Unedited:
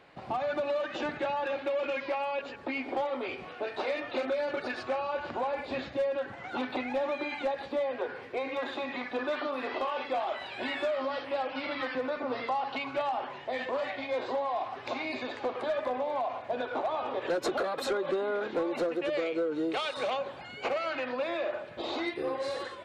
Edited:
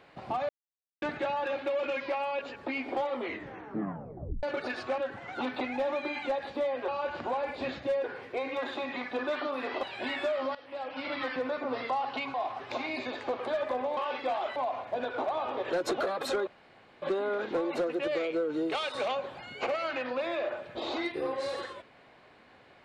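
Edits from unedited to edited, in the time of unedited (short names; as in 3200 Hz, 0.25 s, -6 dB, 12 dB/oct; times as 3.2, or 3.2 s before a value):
0.49–1.02 mute
3.15 tape stop 1.28 s
4.98–6.14 move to 8.04
9.83–10.42 move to 16.13
11.14–11.72 fade in, from -18.5 dB
12.93–14.5 cut
18.04 insert room tone 0.55 s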